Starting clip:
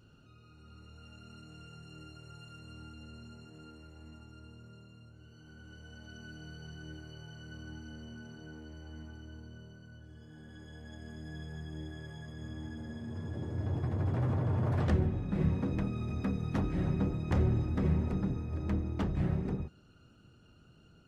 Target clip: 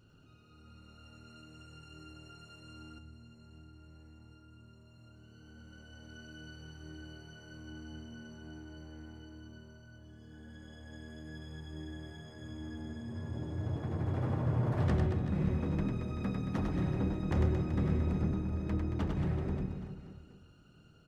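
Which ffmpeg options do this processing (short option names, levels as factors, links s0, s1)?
-filter_complex "[0:a]aecho=1:1:100|225|381.2|576.6|820.7:0.631|0.398|0.251|0.158|0.1,asettb=1/sr,asplit=3[s0][s1][s2];[s0]atrim=end=2.984[s3];[s1]atrim=start=2.98:end=4.98,asetpts=PTS-STARTPTS,afade=t=in:d=0.004:c=qsin,afade=t=out:st=1.996:d=0.004:c=qsin,acrossover=split=180[s4][s5];[s5]acompressor=threshold=0.00126:ratio=4[s6];[s4][s6]amix=inputs=2:normalize=0[s7];[s2]atrim=start=4.976[s8];[s3][s7]acrossfade=d=0.004:c1=hsin:c2=qsin[s9];[s9][s8]acrossfade=d=0.004:c1=qsin:c2=hsin,volume=0.75"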